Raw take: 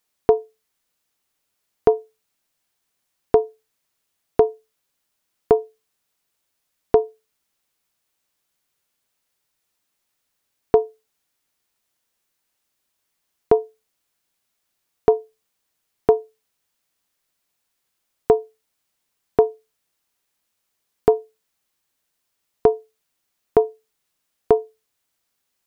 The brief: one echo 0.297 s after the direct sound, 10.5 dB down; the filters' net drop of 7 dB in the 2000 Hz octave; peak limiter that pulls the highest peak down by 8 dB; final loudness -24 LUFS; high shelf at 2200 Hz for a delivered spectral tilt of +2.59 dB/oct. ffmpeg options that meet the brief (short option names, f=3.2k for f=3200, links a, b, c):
-af "equalizer=f=2k:t=o:g=-7.5,highshelf=f=2.2k:g=-4.5,alimiter=limit=-10.5dB:level=0:latency=1,aecho=1:1:297:0.299,volume=4.5dB"